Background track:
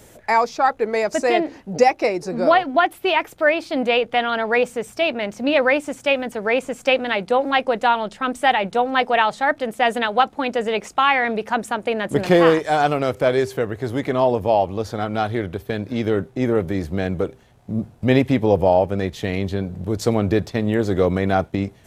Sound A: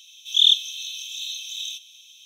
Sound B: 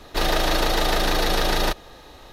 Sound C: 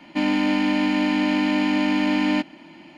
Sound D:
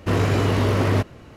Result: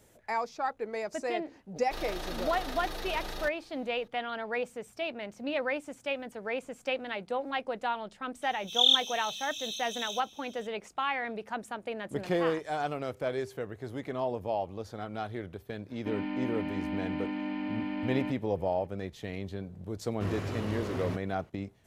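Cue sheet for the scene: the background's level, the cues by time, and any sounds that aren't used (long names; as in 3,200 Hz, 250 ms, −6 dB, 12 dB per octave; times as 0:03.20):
background track −14.5 dB
0:01.76: mix in B −17.5 dB
0:08.42: mix in A −6.5 dB
0:15.90: mix in C −13 dB + high-frequency loss of the air 340 metres
0:20.14: mix in D −15.5 dB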